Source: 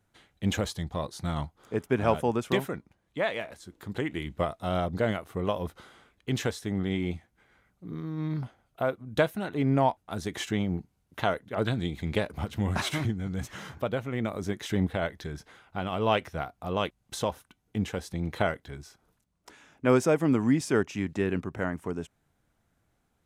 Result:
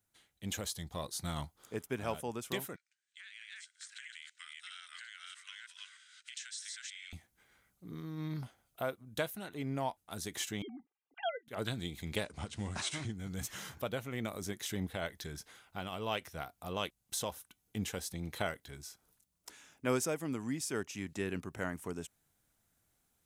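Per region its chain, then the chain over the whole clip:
2.76–7.13 reverse delay 0.323 s, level -2 dB + Chebyshev band-pass 1500–8600 Hz, order 4 + compressor 8:1, threshold -41 dBFS
10.62–11.48 sine-wave speech + comb 2.5 ms, depth 74%
12.24–13.13 block floating point 7-bit + steep low-pass 9200 Hz 48 dB/oct
whole clip: pre-emphasis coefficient 0.8; vocal rider within 3 dB 0.5 s; gain +3 dB

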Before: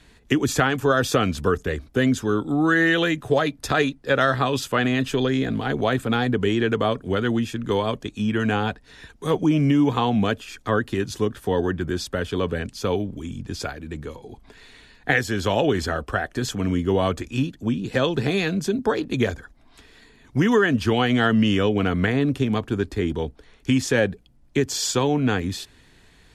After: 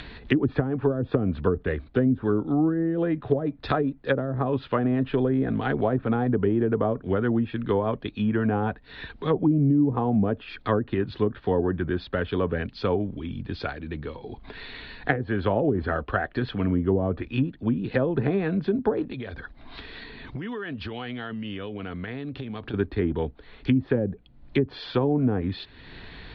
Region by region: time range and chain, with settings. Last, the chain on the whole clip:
19.06–22.74 high shelf 6400 Hz +5 dB + compressor, threshold -31 dBFS
whole clip: treble ducked by the level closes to 360 Hz, closed at -15 dBFS; elliptic low-pass 4200 Hz, stop band 50 dB; upward compressor, threshold -30 dBFS

